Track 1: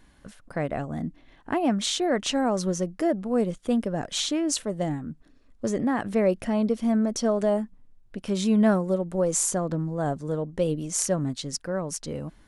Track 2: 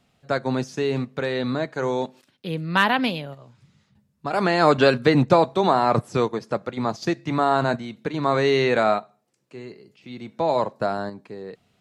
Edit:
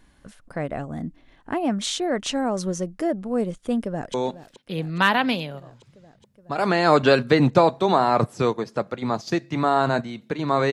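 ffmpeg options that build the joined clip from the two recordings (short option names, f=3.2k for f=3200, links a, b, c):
-filter_complex "[0:a]apad=whole_dur=10.72,atrim=end=10.72,atrim=end=4.142[a];[1:a]atrim=start=1.888:end=8.47[b];[a][b]acrossfade=d=0.004:c1=hsin:c2=hsin,asplit=2[c][d];[d]afade=t=in:st=3.82:d=0.01,afade=t=out:st=4.14:d=0.01,aecho=0:1:420|840|1260|1680|2100|2520|2940|3360|3780|4200|4620|5040:0.177828|0.142262|0.11381|0.0910479|0.0728383|0.0582707|0.0466165|0.0372932|0.0298346|0.0238677|0.0190941|0.0152753[e];[c][e]amix=inputs=2:normalize=0"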